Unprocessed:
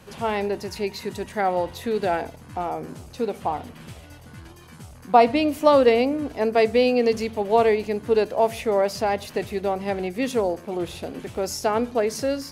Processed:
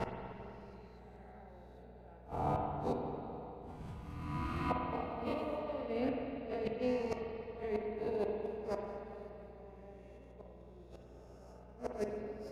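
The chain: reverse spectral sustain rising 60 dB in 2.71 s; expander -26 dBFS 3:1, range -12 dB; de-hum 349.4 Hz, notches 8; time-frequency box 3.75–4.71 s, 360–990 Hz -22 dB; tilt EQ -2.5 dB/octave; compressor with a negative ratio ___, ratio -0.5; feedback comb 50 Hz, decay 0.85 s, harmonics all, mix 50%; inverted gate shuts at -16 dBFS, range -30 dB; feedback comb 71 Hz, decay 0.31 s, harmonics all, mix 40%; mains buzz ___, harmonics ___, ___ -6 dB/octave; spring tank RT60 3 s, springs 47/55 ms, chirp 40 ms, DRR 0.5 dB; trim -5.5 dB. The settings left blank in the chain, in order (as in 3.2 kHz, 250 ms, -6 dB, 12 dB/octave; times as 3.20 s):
-18 dBFS, 60 Hz, 3, -50 dBFS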